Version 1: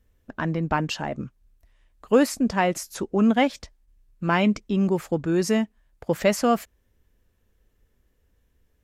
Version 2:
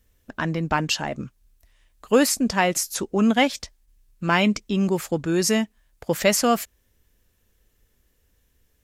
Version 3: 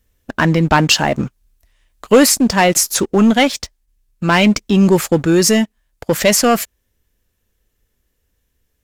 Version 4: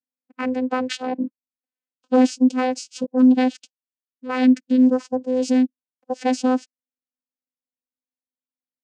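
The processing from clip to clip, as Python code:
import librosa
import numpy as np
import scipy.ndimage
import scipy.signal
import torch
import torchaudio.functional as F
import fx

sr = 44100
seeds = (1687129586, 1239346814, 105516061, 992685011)

y1 = fx.high_shelf(x, sr, hz=2500.0, db=10.5)
y2 = fx.leveller(y1, sr, passes=2)
y2 = fx.rider(y2, sr, range_db=10, speed_s=0.5)
y2 = y2 * 10.0 ** (3.5 / 20.0)
y3 = fx.noise_reduce_blind(y2, sr, reduce_db=22)
y3 = fx.vocoder(y3, sr, bands=8, carrier='saw', carrier_hz=255.0)
y3 = y3 * 10.0 ** (-4.5 / 20.0)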